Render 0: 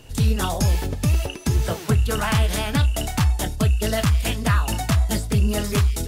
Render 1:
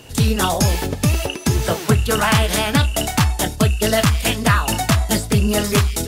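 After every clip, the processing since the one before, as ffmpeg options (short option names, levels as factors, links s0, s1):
-af "aeval=exprs='0.299*(cos(1*acos(clip(val(0)/0.299,-1,1)))-cos(1*PI/2))+0.00473*(cos(3*acos(clip(val(0)/0.299,-1,1)))-cos(3*PI/2))':c=same,highpass=f=150:p=1,volume=2.37"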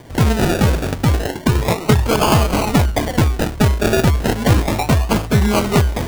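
-af "acrusher=samples=33:mix=1:aa=0.000001:lfo=1:lforange=19.8:lforate=0.33,volume=1.26"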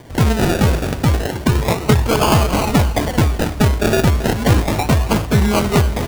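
-af "aecho=1:1:273|546|819|1092|1365:0.178|0.0978|0.0538|0.0296|0.0163"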